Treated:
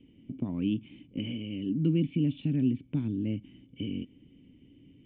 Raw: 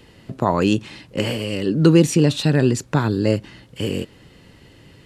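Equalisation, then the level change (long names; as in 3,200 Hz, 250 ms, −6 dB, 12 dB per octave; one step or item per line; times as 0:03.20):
high-frequency loss of the air 110 metres
dynamic equaliser 400 Hz, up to −8 dB, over −30 dBFS, Q 1
formant resonators in series i
0.0 dB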